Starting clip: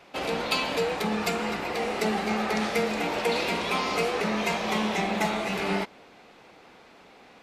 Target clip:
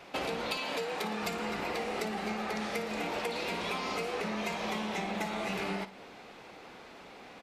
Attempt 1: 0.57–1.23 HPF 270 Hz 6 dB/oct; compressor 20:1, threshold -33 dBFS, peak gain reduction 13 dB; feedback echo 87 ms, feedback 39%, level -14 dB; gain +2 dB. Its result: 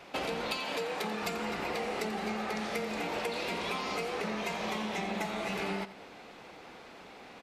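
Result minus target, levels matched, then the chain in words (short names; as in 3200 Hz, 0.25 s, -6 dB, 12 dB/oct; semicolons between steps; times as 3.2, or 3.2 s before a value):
echo 30 ms late
0.57–1.23 HPF 270 Hz 6 dB/oct; compressor 20:1, threshold -33 dBFS, peak gain reduction 13 dB; feedback echo 57 ms, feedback 39%, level -14 dB; gain +2 dB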